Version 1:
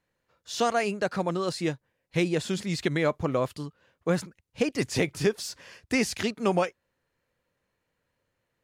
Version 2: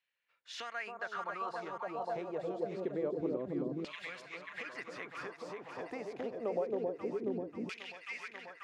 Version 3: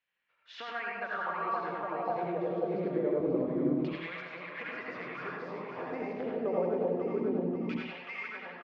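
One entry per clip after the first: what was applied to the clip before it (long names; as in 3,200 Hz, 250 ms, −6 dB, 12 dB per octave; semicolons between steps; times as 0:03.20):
delay that swaps between a low-pass and a high-pass 269 ms, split 980 Hz, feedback 84%, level −3 dB; downward compressor, threshold −28 dBFS, peak gain reduction 10.5 dB; auto-filter band-pass saw down 0.26 Hz 260–2,900 Hz; level +1.5 dB
high-frequency loss of the air 250 metres; single-tap delay 104 ms −7 dB; convolution reverb RT60 0.40 s, pre-delay 69 ms, DRR −1 dB; level +2.5 dB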